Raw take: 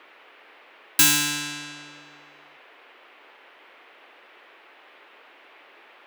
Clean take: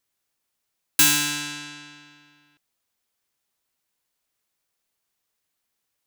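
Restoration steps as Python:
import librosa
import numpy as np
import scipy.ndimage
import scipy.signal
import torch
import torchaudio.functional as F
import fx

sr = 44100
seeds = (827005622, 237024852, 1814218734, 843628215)

y = fx.noise_reduce(x, sr, print_start_s=4.51, print_end_s=5.01, reduce_db=27.0)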